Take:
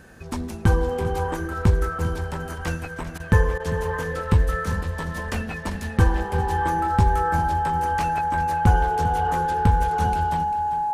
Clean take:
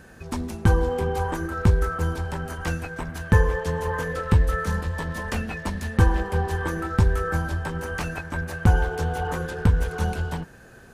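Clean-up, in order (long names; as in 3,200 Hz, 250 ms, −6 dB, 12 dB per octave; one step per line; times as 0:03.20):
notch filter 840 Hz, Q 30
repair the gap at 0:03.18/0:03.58, 18 ms
echo removal 396 ms −13 dB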